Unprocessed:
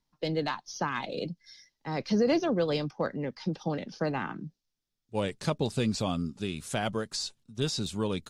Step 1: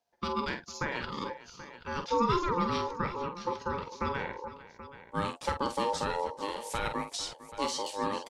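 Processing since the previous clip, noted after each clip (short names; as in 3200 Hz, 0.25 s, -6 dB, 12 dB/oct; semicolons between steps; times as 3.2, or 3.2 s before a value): ring modulator 700 Hz; on a send: tapped delay 47/452/780 ms -8/-16.5/-14.5 dB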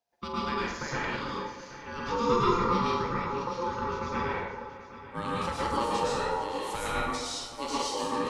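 plate-style reverb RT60 0.92 s, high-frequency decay 0.75×, pre-delay 95 ms, DRR -6 dB; gain -4 dB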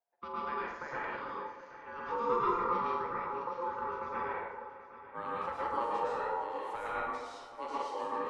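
three-band isolator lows -15 dB, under 390 Hz, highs -20 dB, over 2100 Hz; gain -3 dB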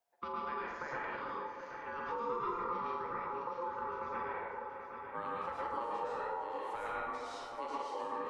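compressor 2.5:1, threshold -45 dBFS, peak gain reduction 12.5 dB; gain +5 dB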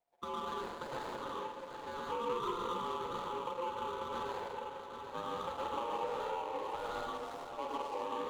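median filter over 25 samples; gain +2.5 dB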